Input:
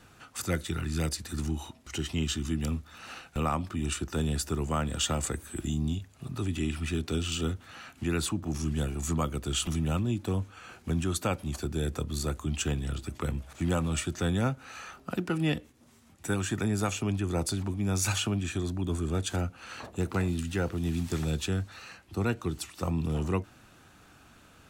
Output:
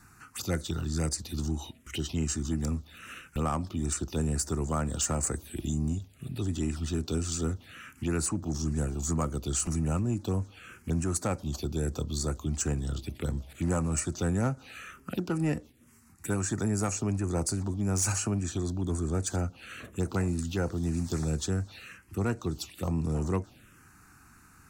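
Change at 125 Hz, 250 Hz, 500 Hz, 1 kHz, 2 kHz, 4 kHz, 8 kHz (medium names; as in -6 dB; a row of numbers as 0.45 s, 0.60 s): 0.0 dB, 0.0 dB, 0.0 dB, -1.5 dB, -4.0 dB, -5.0 dB, +3.0 dB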